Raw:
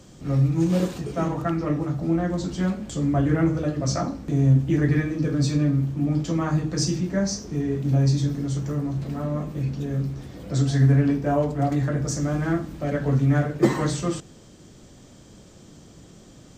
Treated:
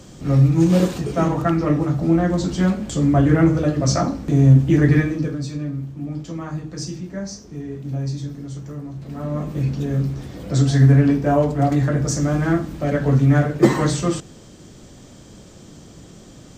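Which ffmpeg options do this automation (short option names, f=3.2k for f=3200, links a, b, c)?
-af "volume=16.5dB,afade=t=out:st=5:d=0.41:silence=0.266073,afade=t=in:st=9.01:d=0.55:silence=0.298538"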